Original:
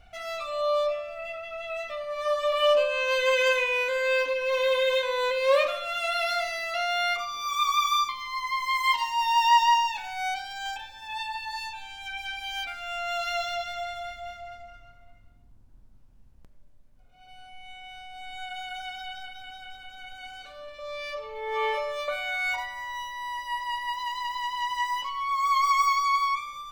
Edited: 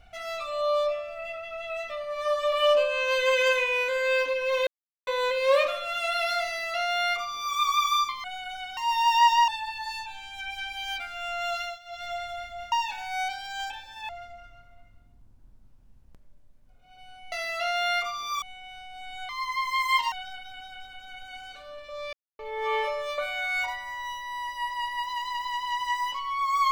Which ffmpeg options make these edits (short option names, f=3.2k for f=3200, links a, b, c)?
-filter_complex "[0:a]asplit=16[a][b][c][d][e][f][g][h][i][j][k][l][m][n][o][p];[a]atrim=end=4.67,asetpts=PTS-STARTPTS,afade=t=out:st=4.666:d=0.004:c=hsin[q];[b]atrim=start=4.67:end=5.07,asetpts=PTS-STARTPTS,volume=0[r];[c]atrim=start=5.07:end=8.242,asetpts=PTS-STARTPTS,afade=t=in:d=0.004:c=hsin[s];[d]atrim=start=18.488:end=19.022[t];[e]atrim=start=9.068:end=9.782[u];[f]atrim=start=11.148:end=13.46,asetpts=PTS-STARTPTS,afade=t=out:st=2.072:d=0.24:silence=0.11885[v];[g]atrim=start=13.46:end=13.52,asetpts=PTS-STARTPTS,volume=-18.5dB[w];[h]atrim=start=13.52:end=14.392,asetpts=PTS-STARTPTS,afade=t=in:d=0.24:silence=0.11885[x];[i]atrim=start=9.778:end=11.152[y];[j]atrim=start=14.388:end=17.622[z];[k]atrim=start=6.458:end=7.562[aa];[l]atrim=start=17.618:end=18.492[ab];[m]atrim=start=8.238:end=9.072[ac];[n]atrim=start=19.018:end=21.03,asetpts=PTS-STARTPTS,afade=t=out:st=2.008:d=0.004:c=hsin[ad];[o]atrim=start=21.03:end=21.29,asetpts=PTS-STARTPTS,volume=0[ae];[p]atrim=start=21.29,asetpts=PTS-STARTPTS,afade=t=in:d=0.004:c=hsin[af];[q][r][s]concat=n=3:v=0:a=1[ag];[ag][t]acrossfade=d=0.004:c1=hsin:c2=hsin[ah];[ah][u]acrossfade=d=0.004:c1=hsin:c2=hsin[ai];[v][w][x]concat=n=3:v=0:a=1[aj];[ai][aj]acrossfade=d=0.004:c1=hsin:c2=hsin[ak];[ak][y]acrossfade=d=0.004:c1=hsin:c2=hsin[al];[al][z]acrossfade=d=0.004:c1=hsin:c2=hsin[am];[am][aa]acrossfade=d=0.004:c1=hsin:c2=hsin[an];[an][ab]acrossfade=d=0.004:c1=hsin:c2=hsin[ao];[ao][ac]acrossfade=d=0.004:c1=hsin:c2=hsin[ap];[ad][ae][af]concat=n=3:v=0:a=1[aq];[ap][aq]acrossfade=d=0.004:c1=hsin:c2=hsin"